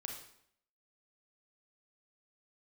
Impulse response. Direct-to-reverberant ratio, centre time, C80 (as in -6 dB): 1.0 dB, 32 ms, 8.0 dB